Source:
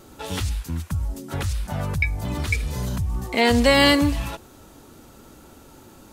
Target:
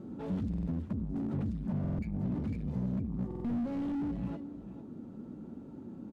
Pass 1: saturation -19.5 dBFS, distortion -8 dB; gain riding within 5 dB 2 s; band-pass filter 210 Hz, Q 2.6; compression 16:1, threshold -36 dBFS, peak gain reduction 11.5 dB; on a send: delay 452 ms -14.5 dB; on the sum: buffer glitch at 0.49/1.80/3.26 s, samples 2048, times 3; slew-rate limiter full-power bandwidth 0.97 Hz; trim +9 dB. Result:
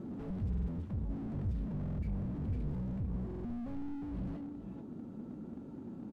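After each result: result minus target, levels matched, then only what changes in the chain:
slew-rate limiter: distortion +11 dB; saturation: distortion -5 dB
change: slew-rate limiter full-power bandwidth 2.5 Hz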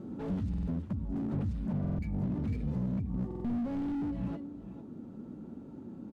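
saturation: distortion -5 dB
change: saturation -28.5 dBFS, distortion -4 dB

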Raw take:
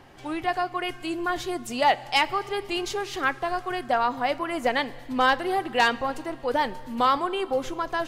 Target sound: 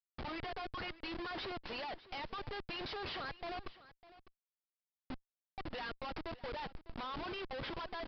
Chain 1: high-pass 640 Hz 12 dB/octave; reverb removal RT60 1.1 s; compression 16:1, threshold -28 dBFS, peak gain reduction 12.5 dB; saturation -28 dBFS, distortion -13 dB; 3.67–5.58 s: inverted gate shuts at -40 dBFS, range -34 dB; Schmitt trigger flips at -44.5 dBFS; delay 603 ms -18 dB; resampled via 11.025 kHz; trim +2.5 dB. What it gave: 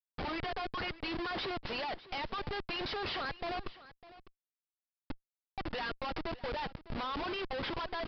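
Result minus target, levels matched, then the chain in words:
saturation: distortion -8 dB
high-pass 640 Hz 12 dB/octave; reverb removal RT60 1.1 s; compression 16:1, threshold -28 dBFS, peak gain reduction 12.5 dB; saturation -38 dBFS, distortion -6 dB; 3.67–5.58 s: inverted gate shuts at -40 dBFS, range -34 dB; Schmitt trigger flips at -44.5 dBFS; delay 603 ms -18 dB; resampled via 11.025 kHz; trim +2.5 dB

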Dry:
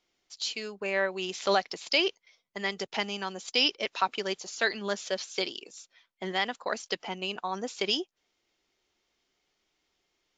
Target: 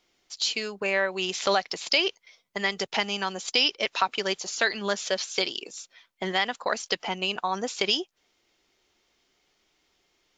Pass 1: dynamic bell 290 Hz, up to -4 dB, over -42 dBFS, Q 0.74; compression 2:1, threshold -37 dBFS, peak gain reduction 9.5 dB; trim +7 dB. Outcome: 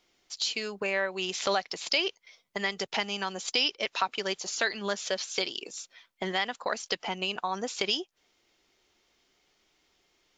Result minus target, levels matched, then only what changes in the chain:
compression: peak gain reduction +4 dB
change: compression 2:1, threshold -29 dBFS, peak gain reduction 5.5 dB

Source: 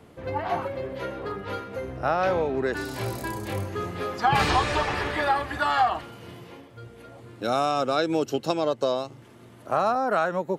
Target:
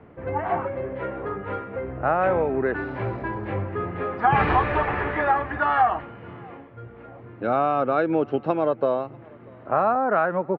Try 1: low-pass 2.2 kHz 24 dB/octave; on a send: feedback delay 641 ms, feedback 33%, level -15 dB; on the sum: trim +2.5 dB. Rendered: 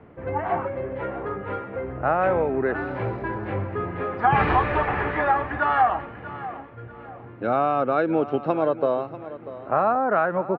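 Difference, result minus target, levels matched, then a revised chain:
echo-to-direct +12 dB
low-pass 2.2 kHz 24 dB/octave; on a send: feedback delay 641 ms, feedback 33%, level -27 dB; on the sum: trim +2.5 dB

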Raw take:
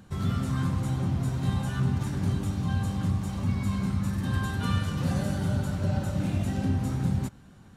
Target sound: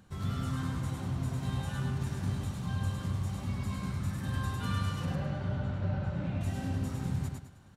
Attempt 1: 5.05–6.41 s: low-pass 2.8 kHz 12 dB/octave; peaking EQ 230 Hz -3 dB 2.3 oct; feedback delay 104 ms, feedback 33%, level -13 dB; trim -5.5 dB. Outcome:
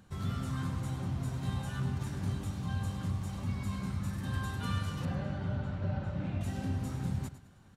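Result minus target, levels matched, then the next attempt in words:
echo-to-direct -10 dB
5.05–6.41 s: low-pass 2.8 kHz 12 dB/octave; peaking EQ 230 Hz -3 dB 2.3 oct; feedback delay 104 ms, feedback 33%, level -3 dB; trim -5.5 dB

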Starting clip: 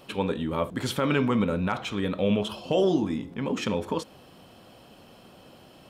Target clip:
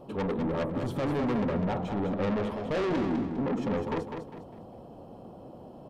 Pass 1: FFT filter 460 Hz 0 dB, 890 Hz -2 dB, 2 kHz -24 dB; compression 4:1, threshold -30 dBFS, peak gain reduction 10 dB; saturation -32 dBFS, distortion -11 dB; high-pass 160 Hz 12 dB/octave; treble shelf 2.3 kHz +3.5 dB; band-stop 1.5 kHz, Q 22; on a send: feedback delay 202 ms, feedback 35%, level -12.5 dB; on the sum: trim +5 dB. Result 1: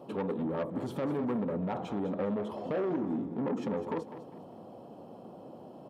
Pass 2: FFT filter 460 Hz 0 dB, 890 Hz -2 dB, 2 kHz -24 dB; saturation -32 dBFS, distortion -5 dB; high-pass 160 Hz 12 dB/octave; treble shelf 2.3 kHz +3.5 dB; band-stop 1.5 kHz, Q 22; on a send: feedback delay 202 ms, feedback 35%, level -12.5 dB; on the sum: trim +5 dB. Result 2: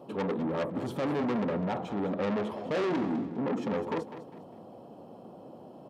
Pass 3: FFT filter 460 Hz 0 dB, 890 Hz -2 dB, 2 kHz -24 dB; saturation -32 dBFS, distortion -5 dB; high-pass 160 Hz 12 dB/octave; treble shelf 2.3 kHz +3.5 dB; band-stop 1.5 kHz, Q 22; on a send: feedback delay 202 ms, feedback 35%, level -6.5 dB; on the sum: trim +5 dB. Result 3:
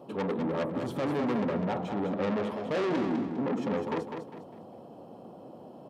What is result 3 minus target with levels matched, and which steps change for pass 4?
125 Hz band -3.0 dB
remove: high-pass 160 Hz 12 dB/octave

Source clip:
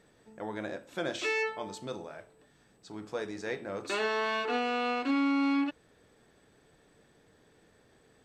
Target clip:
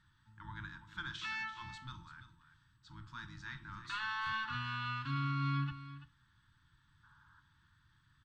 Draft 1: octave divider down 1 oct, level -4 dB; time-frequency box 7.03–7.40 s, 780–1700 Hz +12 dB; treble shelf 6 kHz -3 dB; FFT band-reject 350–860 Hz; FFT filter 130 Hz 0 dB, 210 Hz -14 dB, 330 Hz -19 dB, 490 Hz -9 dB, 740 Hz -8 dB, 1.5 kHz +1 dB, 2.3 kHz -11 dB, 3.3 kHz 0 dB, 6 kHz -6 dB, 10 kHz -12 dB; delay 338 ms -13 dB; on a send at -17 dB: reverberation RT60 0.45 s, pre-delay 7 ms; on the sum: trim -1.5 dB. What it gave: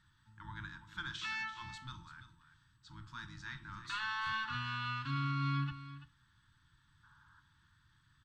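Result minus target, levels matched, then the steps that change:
8 kHz band +3.0 dB
change: treble shelf 6 kHz -9.5 dB

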